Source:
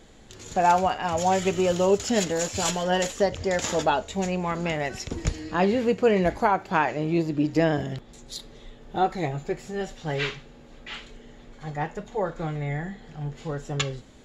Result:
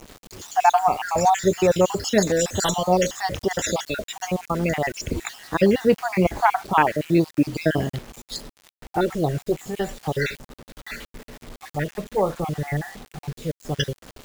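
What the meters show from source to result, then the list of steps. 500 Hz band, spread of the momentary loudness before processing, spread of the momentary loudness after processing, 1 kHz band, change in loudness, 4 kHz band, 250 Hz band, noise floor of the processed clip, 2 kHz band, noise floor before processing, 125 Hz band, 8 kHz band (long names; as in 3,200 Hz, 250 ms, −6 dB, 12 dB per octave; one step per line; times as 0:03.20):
+2.5 dB, 15 LU, 16 LU, +3.5 dB, +3.0 dB, +2.0 dB, +3.0 dB, below −85 dBFS, +2.5 dB, −49 dBFS, +3.0 dB, +3.0 dB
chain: time-frequency cells dropped at random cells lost 51%
bit reduction 8 bits
level +6 dB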